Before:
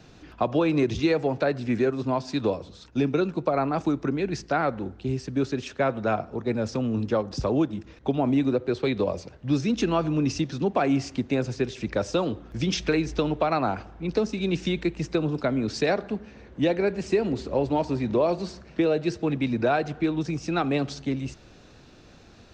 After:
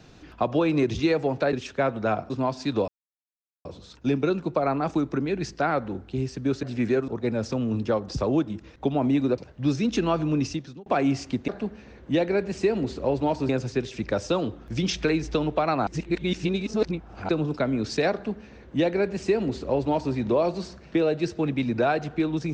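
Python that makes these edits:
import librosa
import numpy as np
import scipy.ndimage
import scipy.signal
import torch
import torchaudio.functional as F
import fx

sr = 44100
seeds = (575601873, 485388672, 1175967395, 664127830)

y = fx.edit(x, sr, fx.swap(start_s=1.53, length_s=0.45, other_s=5.54, other_length_s=0.77),
    fx.insert_silence(at_s=2.56, length_s=0.77),
    fx.cut(start_s=8.61, length_s=0.62),
    fx.fade_out_span(start_s=10.23, length_s=0.48),
    fx.reverse_span(start_s=13.71, length_s=1.42),
    fx.duplicate(start_s=15.97, length_s=2.01, to_s=11.33), tone=tone)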